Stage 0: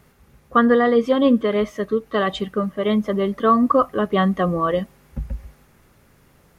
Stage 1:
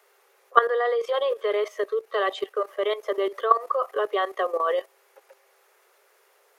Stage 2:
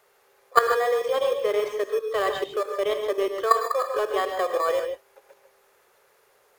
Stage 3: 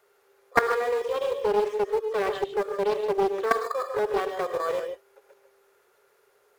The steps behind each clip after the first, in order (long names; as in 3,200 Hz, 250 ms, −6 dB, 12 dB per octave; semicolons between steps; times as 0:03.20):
Butterworth high-pass 380 Hz 96 dB per octave; output level in coarse steps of 13 dB; level +3 dB
in parallel at −10 dB: decimation without filtering 15×; on the sum: reverb whose tail is shaped and stops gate 170 ms rising, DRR 5 dB; level −2 dB
hollow resonant body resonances 400/1,400 Hz, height 9 dB; highs frequency-modulated by the lows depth 0.4 ms; level −5 dB